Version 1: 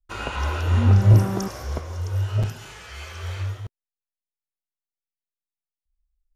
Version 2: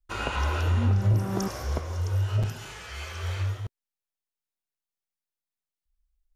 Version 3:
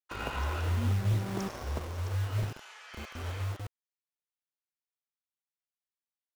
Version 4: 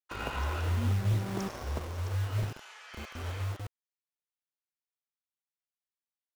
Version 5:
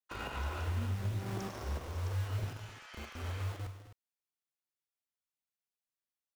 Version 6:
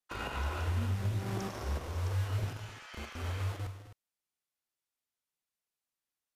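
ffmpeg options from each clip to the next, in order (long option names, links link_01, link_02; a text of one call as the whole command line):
ffmpeg -i in.wav -af "acompressor=threshold=-22dB:ratio=3" out.wav
ffmpeg -i in.wav -filter_complex "[0:a]highshelf=frequency=6200:gain=-9,acrossover=split=580[link_01][link_02];[link_01]acrusher=bits=5:mix=0:aa=0.000001[link_03];[link_03][link_02]amix=inputs=2:normalize=0,volume=-6dB" out.wav
ffmpeg -i in.wav -af anull out.wav
ffmpeg -i in.wav -filter_complex "[0:a]alimiter=level_in=2dB:limit=-24dB:level=0:latency=1:release=112,volume=-2dB,asplit=2[link_01][link_02];[link_02]aecho=0:1:44|205|259:0.299|0.211|0.237[link_03];[link_01][link_03]amix=inputs=2:normalize=0,volume=-3.5dB" out.wav
ffmpeg -i in.wav -af "volume=3dB" -ar 32000 -c:a libmp3lame -b:a 128k out.mp3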